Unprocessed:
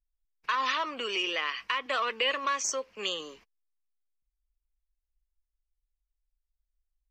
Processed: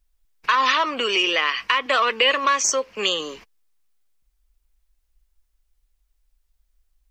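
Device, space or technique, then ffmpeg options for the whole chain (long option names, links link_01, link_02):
parallel compression: -filter_complex "[0:a]asplit=2[link_01][link_02];[link_02]acompressor=threshold=-46dB:ratio=6,volume=0dB[link_03];[link_01][link_03]amix=inputs=2:normalize=0,volume=9dB"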